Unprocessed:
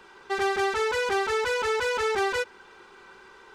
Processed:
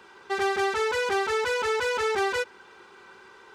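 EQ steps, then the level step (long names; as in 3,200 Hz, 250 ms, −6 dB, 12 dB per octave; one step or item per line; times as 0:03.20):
high-pass filter 67 Hz
0.0 dB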